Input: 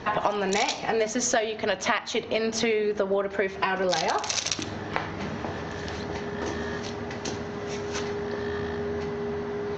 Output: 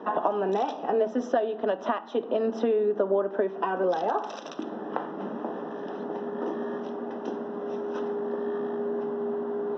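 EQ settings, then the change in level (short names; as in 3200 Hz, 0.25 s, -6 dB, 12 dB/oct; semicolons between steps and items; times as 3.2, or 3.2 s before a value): running mean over 20 samples; steep high-pass 210 Hz 36 dB/oct; air absorption 88 m; +2.0 dB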